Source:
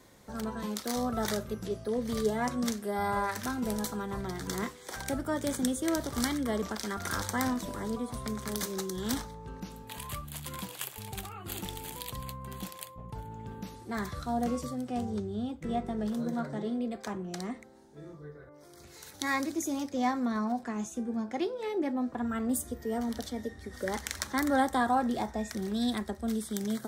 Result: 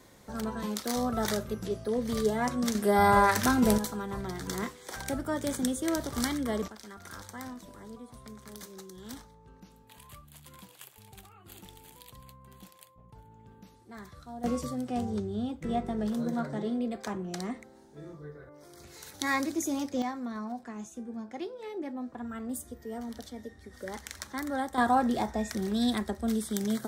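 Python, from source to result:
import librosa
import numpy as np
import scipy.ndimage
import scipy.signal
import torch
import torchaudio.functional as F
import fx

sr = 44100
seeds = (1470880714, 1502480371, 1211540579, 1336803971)

y = fx.gain(x, sr, db=fx.steps((0.0, 1.5), (2.75, 9.0), (3.78, 0.0), (6.68, -11.5), (14.44, 1.5), (20.02, -6.0), (24.78, 2.5)))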